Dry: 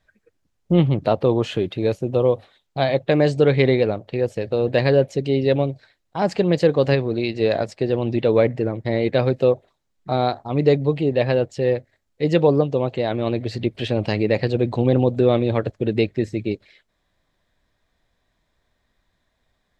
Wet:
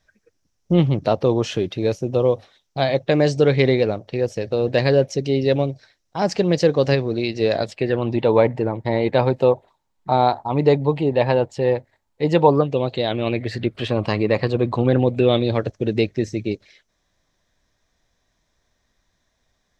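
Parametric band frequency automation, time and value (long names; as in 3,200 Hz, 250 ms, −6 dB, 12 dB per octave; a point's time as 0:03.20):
parametric band +13 dB 0.41 octaves
0:07.53 5,700 Hz
0:08.13 910 Hz
0:12.53 910 Hz
0:12.86 4,500 Hz
0:13.87 1,100 Hz
0:14.75 1,100 Hz
0:15.64 5,900 Hz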